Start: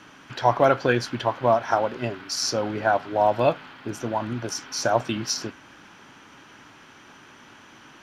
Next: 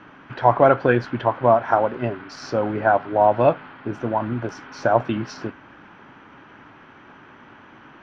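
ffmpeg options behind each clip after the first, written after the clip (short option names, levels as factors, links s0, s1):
-af "lowpass=1900,volume=1.58"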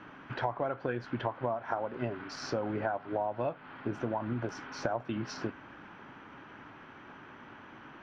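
-af "acompressor=threshold=0.0562:ratio=12,volume=0.631"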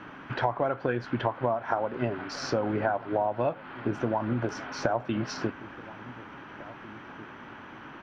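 -filter_complex "[0:a]asplit=2[s0][s1];[s1]adelay=1749,volume=0.126,highshelf=f=4000:g=-39.4[s2];[s0][s2]amix=inputs=2:normalize=0,volume=1.88"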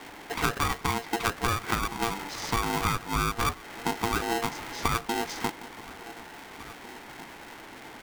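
-af "aeval=exprs='val(0)*sgn(sin(2*PI*580*n/s))':c=same"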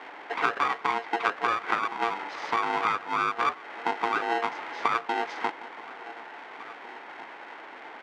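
-af "highpass=490,lowpass=2300,volume=1.58"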